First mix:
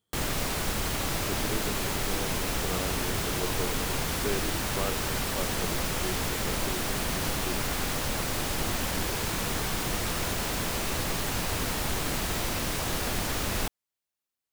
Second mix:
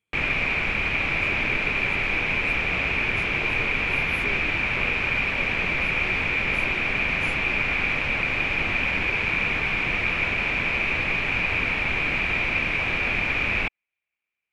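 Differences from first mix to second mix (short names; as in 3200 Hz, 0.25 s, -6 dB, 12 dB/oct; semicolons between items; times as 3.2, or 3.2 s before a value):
speech -5.0 dB; background: add synth low-pass 2400 Hz, resonance Q 13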